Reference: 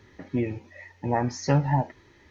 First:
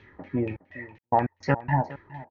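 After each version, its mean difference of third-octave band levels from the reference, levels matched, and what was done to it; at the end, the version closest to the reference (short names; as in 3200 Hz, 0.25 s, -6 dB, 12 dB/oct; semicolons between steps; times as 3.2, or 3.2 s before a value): 6.0 dB: high shelf 6100 Hz +4.5 dB; step gate "xxxx.xx.x.x." 107 bpm -60 dB; LFO low-pass saw down 4.2 Hz 800–3000 Hz; echo 0.414 s -17.5 dB; gain -1 dB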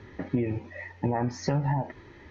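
4.5 dB: limiter -17.5 dBFS, peak gain reduction 7.5 dB; air absorption 64 m; compressor 10:1, threshold -30 dBFS, peak gain reduction 9 dB; high shelf 3400 Hz -8.5 dB; gain +7.5 dB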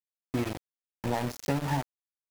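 11.0 dB: notches 50/100/150/200/250/300/350/400/450 Hz; dynamic EQ 290 Hz, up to +6 dB, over -45 dBFS, Q 7.5; compressor 16:1, threshold -24 dBFS, peak gain reduction 9.5 dB; sample gate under -30.5 dBFS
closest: second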